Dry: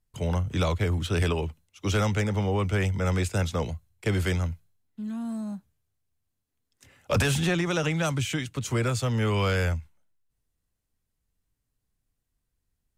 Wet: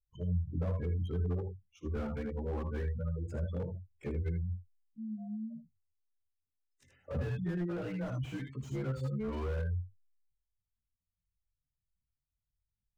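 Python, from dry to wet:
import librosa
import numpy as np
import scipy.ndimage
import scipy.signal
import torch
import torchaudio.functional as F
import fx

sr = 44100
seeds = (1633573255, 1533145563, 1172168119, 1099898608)

y = fx.frame_reverse(x, sr, frame_ms=46.0)
y = fx.spec_gate(y, sr, threshold_db=-15, keep='strong')
y = fx.room_early_taps(y, sr, ms=(57, 78), db=(-16.0, -9.5))
y = fx.slew_limit(y, sr, full_power_hz=16.0)
y = y * librosa.db_to_amplitude(-6.0)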